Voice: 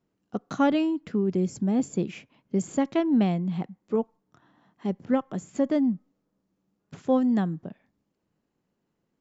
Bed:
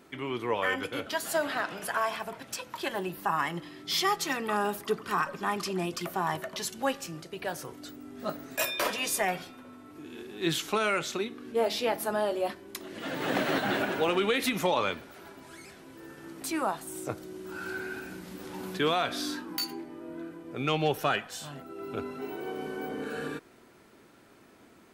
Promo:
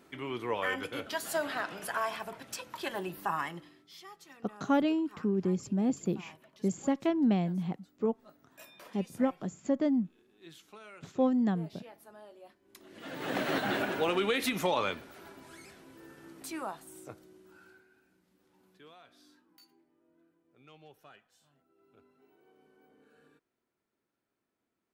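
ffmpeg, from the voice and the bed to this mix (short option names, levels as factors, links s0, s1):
-filter_complex "[0:a]adelay=4100,volume=0.596[s0];[1:a]volume=7.5,afade=t=out:st=3.29:d=0.6:silence=0.1,afade=t=in:st=12.6:d=0.96:silence=0.0891251,afade=t=out:st=15.3:d=2.55:silence=0.0501187[s1];[s0][s1]amix=inputs=2:normalize=0"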